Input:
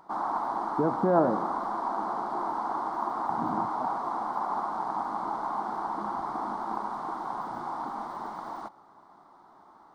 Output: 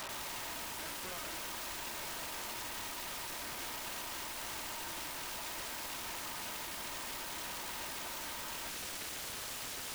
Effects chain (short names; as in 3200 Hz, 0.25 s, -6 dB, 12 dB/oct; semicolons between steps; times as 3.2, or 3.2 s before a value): minimum comb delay 3.2 ms; notches 50/100/150/200/250/300/350 Hz; reverse; compressor 16:1, threshold -44 dBFS, peak gain reduction 25 dB; reverse; overdrive pedal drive 25 dB, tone 4300 Hz, clips at -33.5 dBFS; wrapped overs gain 46.5 dB; gain +9 dB